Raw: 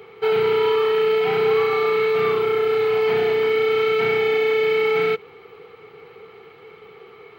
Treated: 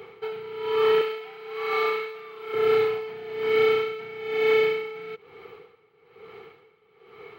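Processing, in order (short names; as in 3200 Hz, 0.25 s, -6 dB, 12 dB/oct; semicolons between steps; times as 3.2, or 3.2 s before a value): 1.01–2.54 HPF 660 Hz 6 dB/oct; dB-linear tremolo 1.1 Hz, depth 19 dB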